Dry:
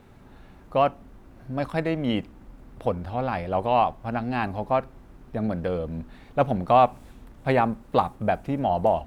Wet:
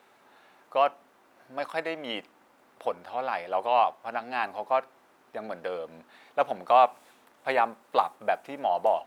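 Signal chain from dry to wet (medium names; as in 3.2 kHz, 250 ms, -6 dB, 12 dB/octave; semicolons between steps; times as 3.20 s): high-pass 620 Hz 12 dB/octave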